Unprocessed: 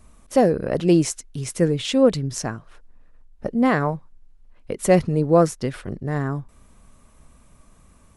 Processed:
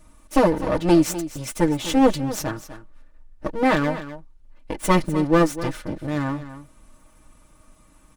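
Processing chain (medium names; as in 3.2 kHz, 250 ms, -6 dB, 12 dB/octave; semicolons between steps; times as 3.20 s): comb filter that takes the minimum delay 6.4 ms; comb 3.4 ms, depth 49%; on a send: delay 250 ms -13.5 dB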